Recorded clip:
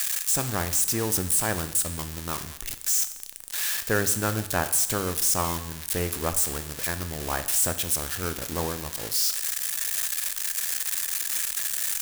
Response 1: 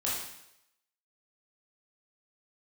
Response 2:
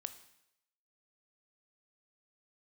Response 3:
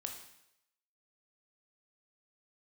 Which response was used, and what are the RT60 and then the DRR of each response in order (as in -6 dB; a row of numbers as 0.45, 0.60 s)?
2; 0.80, 0.80, 0.80 s; -7.0, 10.0, 2.5 dB